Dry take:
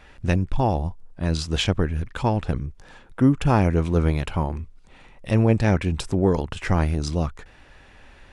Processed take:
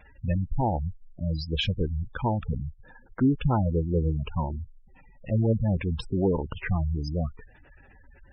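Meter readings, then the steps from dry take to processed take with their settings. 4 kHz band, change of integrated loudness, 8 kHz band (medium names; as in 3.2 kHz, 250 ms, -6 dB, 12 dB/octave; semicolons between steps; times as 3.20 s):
-4.5 dB, -5.0 dB, under -20 dB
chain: Chebyshev shaper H 5 -19 dB, 6 -20 dB, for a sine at -5.5 dBFS; spectral gate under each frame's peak -15 dB strong; trim -6 dB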